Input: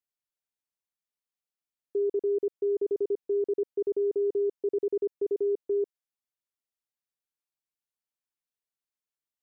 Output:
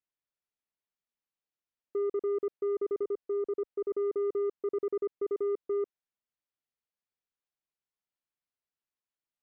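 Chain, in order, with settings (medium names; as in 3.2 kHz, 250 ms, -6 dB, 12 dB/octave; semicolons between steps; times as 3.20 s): 3.03–3.91 s: peaking EQ 120 Hz -7.5 dB 2.1 oct; saturation -25.5 dBFS, distortion -19 dB; distance through air 170 m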